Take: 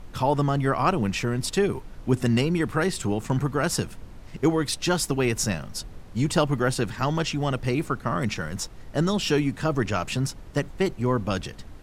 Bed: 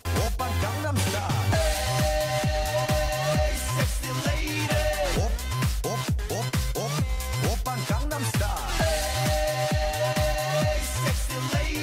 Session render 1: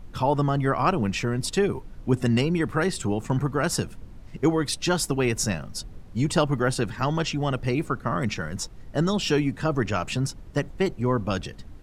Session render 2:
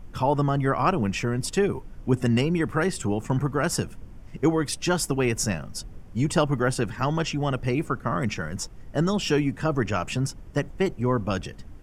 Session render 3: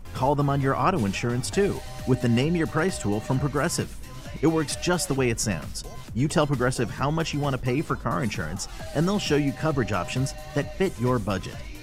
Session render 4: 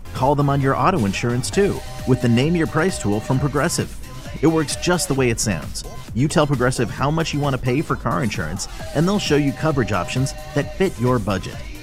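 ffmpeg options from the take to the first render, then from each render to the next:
-af "afftdn=nr=6:nf=-44"
-af "equalizer=f=4k:t=o:w=0.28:g=-9"
-filter_complex "[1:a]volume=-14dB[a];[0:a][a]amix=inputs=2:normalize=0"
-af "volume=5.5dB"

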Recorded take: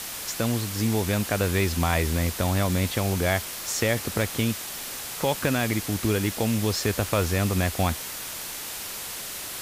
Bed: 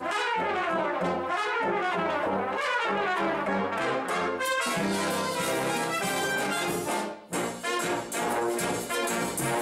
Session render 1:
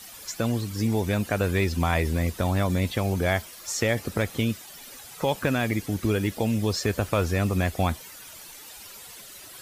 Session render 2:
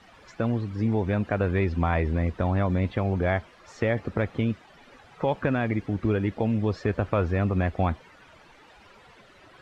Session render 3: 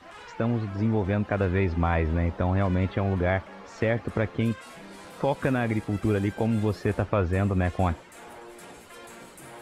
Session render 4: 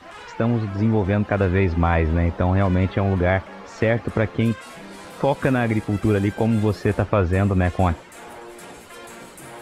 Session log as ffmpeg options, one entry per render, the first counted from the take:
-af "afftdn=nr=13:nf=-35"
-af "lowpass=1.9k"
-filter_complex "[1:a]volume=-17.5dB[a];[0:a][a]amix=inputs=2:normalize=0"
-af "volume=5.5dB"

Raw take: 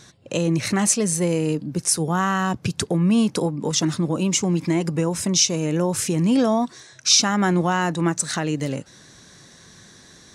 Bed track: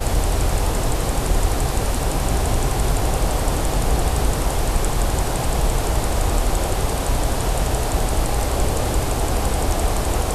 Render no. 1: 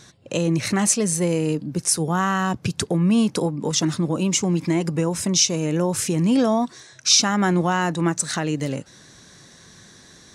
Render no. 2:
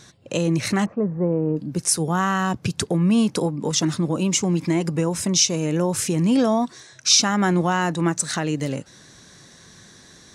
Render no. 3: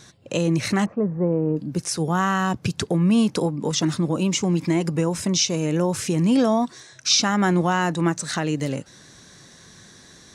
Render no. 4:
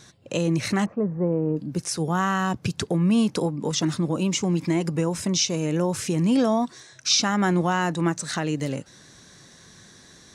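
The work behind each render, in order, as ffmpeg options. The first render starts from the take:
-af anull
-filter_complex "[0:a]asplit=3[a][b][c];[a]afade=t=out:st=0.84:d=0.02[d];[b]lowpass=f=1.2k:w=0.5412,lowpass=f=1.2k:w=1.3066,afade=t=in:st=0.84:d=0.02,afade=t=out:st=1.56:d=0.02[e];[c]afade=t=in:st=1.56:d=0.02[f];[d][e][f]amix=inputs=3:normalize=0"
-filter_complex "[0:a]acrossover=split=5900[a][b];[b]acompressor=threshold=-32dB:ratio=4:attack=1:release=60[c];[a][c]amix=inputs=2:normalize=0"
-af "volume=-2dB"

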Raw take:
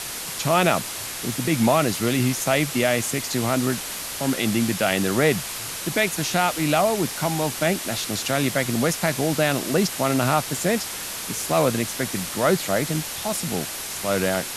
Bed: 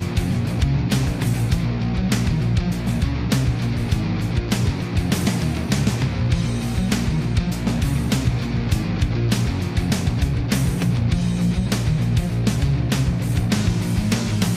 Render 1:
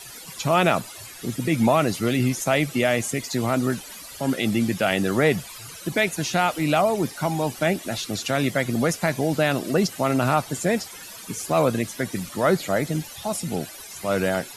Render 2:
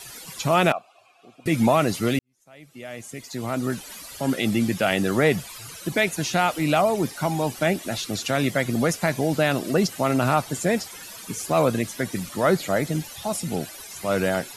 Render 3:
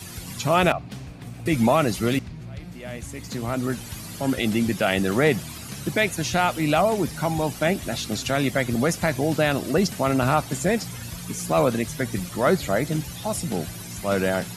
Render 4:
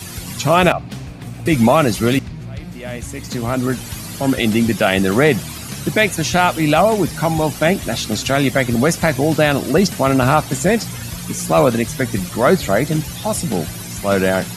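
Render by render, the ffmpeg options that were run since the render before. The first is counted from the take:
-af "afftdn=nr=15:nf=-32"
-filter_complex "[0:a]asettb=1/sr,asplit=3[a][b][c];[a]atrim=end=0.724[d];[b]atrim=start=0.72:end=1.46,asetpts=PTS-STARTPTS,afade=t=in:d=0.004:c=qsin,afade=t=out:st=0.736:d=0.004:c=qsin,asplit=3[e][f][g];[e]bandpass=f=730:t=q:w=8,volume=0dB[h];[f]bandpass=f=1.09k:t=q:w=8,volume=-6dB[i];[g]bandpass=f=2.44k:t=q:w=8,volume=-9dB[j];[h][i][j]amix=inputs=3:normalize=0[k];[c]atrim=start=1.456[l];[d][k]acrossfade=d=0.004:c1=hsin:c2=qsin[m];[m][l]acrossfade=d=0.004:c1=qsin:c2=hsin,asplit=2[n][o];[n]atrim=end=2.19,asetpts=PTS-STARTPTS,afade=t=out:st=2.186:d=0.004:c=hsin[p];[o]atrim=start=2.19,asetpts=PTS-STARTPTS,afade=t=in:d=1.73:c=qua[q];[p][q]concat=n=2:v=0:a=1"
-filter_complex "[1:a]volume=-17.5dB[a];[0:a][a]amix=inputs=2:normalize=0"
-af "volume=7dB,alimiter=limit=-1dB:level=0:latency=1"

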